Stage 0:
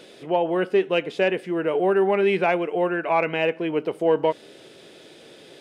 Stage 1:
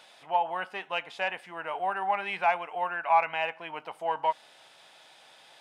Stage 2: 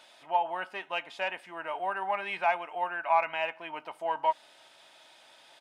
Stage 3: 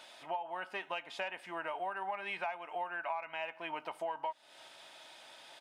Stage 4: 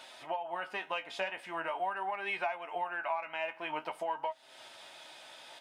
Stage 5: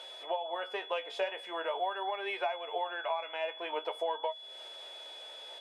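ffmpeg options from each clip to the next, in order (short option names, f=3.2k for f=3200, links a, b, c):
-af "lowshelf=f=580:t=q:w=3:g=-13,volume=-5.5dB"
-af "aecho=1:1:3.2:0.35,volume=-2dB"
-af "acompressor=threshold=-37dB:ratio=10,volume=2dB"
-af "flanger=delay=7.6:depth=8.3:regen=48:speed=0.45:shape=sinusoidal,volume=7dB"
-af "aeval=exprs='val(0)+0.00708*sin(2*PI*3400*n/s)':c=same,highpass=f=450:t=q:w=4.9,volume=-3dB"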